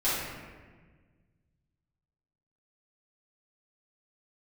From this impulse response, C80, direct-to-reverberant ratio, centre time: 1.5 dB, -13.0 dB, 98 ms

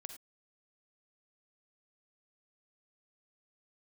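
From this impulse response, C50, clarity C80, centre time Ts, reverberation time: 8.0 dB, 12.0 dB, 13 ms, not exponential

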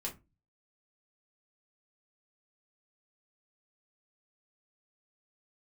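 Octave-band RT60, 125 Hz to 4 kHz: 0.55, 0.40, 0.25, 0.25, 0.20, 0.15 s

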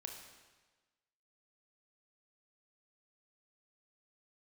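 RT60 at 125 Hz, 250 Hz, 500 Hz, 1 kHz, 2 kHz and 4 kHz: 1.3, 1.3, 1.3, 1.3, 1.3, 1.2 s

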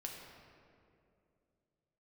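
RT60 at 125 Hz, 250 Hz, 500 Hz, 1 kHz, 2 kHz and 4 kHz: 3.2, 3.0, 3.0, 2.2, 1.9, 1.3 s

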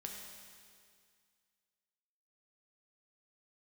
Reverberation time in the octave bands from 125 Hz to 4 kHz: 2.1, 2.1, 2.1, 2.1, 2.1, 2.1 s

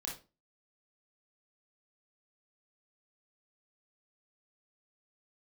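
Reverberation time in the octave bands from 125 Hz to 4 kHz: 0.35, 0.40, 0.35, 0.30, 0.25, 0.25 s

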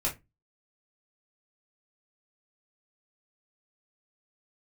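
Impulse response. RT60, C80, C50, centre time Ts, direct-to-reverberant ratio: 0.20 s, 23.0 dB, 13.0 dB, 19 ms, -5.0 dB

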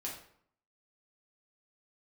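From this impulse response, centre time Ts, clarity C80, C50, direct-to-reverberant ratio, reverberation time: 32 ms, 9.0 dB, 5.0 dB, -4.0 dB, 0.65 s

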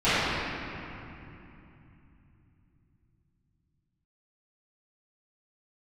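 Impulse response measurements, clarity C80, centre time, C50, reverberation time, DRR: -3.5 dB, 0.201 s, -6.5 dB, 2.9 s, -20.0 dB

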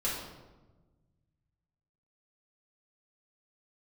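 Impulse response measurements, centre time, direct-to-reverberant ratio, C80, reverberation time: 61 ms, -8.0 dB, 4.5 dB, 1.2 s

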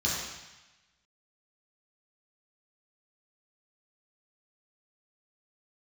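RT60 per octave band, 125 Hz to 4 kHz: 1.2, 1.0, 0.95, 1.1, 1.2, 1.2 s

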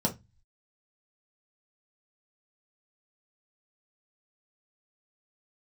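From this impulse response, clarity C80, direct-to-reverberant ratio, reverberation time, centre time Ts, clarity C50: 26.0 dB, -1.5 dB, 0.20 s, 11 ms, 15.0 dB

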